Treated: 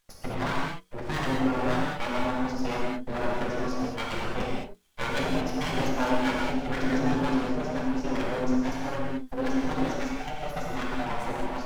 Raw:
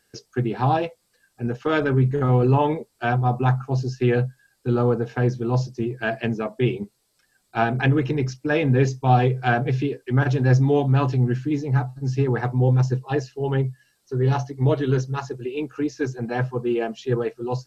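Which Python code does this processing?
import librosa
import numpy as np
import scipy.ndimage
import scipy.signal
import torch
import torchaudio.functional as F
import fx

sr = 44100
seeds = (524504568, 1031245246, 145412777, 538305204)

p1 = np.abs(x)
p2 = fx.hum_notches(p1, sr, base_hz=60, count=8)
p3 = fx.stretch_grains(p2, sr, factor=0.66, grain_ms=45.0)
p4 = np.clip(p3, -10.0 ** (-21.0 / 20.0), 10.0 ** (-21.0 / 20.0))
p5 = p3 + F.gain(torch.from_numpy(p4), -4.0).numpy()
p6 = fx.rev_gated(p5, sr, seeds[0], gate_ms=240, shape='flat', drr_db=-3.5)
y = F.gain(torch.from_numpy(p6), -8.5).numpy()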